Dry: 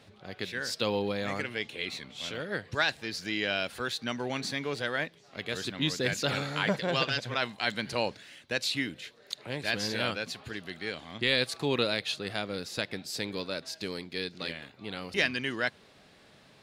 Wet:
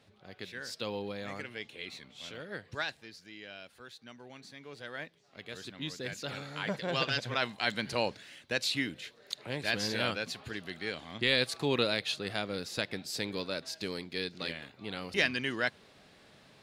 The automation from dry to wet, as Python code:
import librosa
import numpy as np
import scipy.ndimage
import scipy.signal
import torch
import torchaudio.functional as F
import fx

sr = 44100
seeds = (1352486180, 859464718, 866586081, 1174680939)

y = fx.gain(x, sr, db=fx.line((2.81, -7.5), (3.25, -17.0), (4.52, -17.0), (5.0, -9.5), (6.43, -9.5), (7.15, -1.0)))